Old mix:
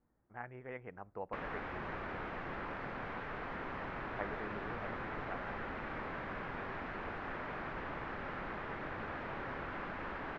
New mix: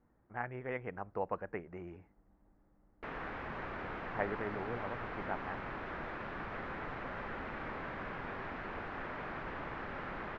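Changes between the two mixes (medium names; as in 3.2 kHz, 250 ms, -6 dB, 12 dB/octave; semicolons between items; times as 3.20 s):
speech +6.5 dB; background: entry +1.70 s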